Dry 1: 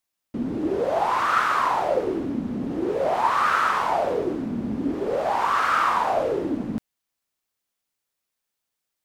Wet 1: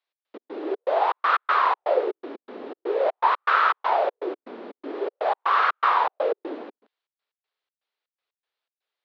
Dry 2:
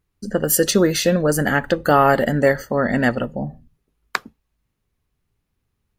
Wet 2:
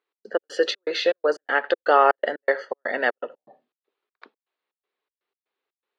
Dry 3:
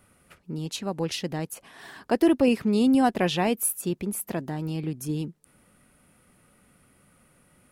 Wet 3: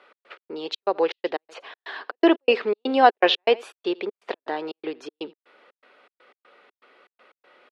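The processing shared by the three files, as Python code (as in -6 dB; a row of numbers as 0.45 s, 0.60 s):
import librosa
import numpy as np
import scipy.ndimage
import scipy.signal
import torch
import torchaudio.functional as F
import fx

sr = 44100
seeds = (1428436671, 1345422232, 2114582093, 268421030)

y = x + 10.0 ** (-23.5 / 20.0) * np.pad(x, (int(83 * sr / 1000.0), 0))[:len(x)]
y = fx.step_gate(y, sr, bpm=121, pattern='x.x.xx.x', floor_db=-60.0, edge_ms=4.5)
y = scipy.signal.sosfilt(scipy.signal.ellip(3, 1.0, 60, [410.0, 4000.0], 'bandpass', fs=sr, output='sos'), y)
y = y * 10.0 ** (-26 / 20.0) / np.sqrt(np.mean(np.square(y)))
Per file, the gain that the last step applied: +2.0 dB, -1.0 dB, +10.5 dB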